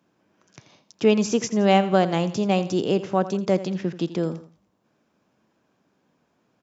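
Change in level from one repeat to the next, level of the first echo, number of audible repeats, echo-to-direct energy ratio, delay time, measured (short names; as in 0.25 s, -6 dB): -8.0 dB, -14.5 dB, 2, -14.0 dB, 84 ms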